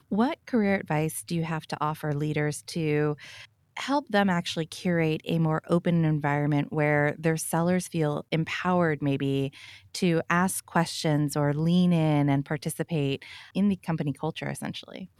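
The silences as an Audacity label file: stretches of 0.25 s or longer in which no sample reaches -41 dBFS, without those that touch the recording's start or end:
3.450000	3.770000	silence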